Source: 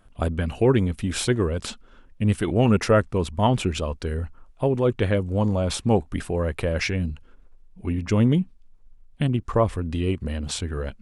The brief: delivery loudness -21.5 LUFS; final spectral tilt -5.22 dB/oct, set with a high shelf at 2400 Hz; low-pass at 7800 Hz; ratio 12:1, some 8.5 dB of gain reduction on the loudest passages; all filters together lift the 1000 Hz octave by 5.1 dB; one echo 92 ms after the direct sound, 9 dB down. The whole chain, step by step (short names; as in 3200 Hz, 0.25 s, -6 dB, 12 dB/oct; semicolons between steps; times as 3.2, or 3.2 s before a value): LPF 7800 Hz; bell 1000 Hz +5.5 dB; high shelf 2400 Hz +5.5 dB; compressor 12:1, threshold -20 dBFS; echo 92 ms -9 dB; gain +5 dB